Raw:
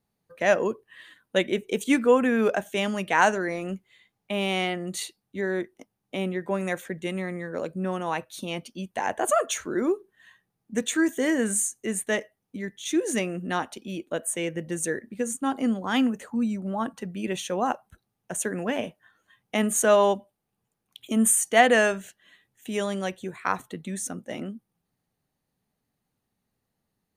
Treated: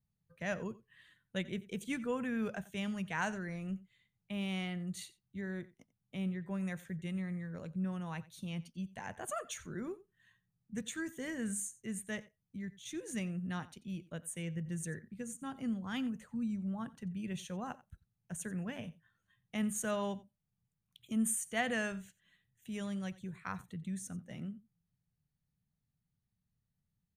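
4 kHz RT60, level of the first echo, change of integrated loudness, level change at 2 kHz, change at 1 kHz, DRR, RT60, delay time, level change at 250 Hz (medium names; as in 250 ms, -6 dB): no reverb, -19.5 dB, -13.5 dB, -14.0 dB, -17.5 dB, no reverb, no reverb, 89 ms, -10.0 dB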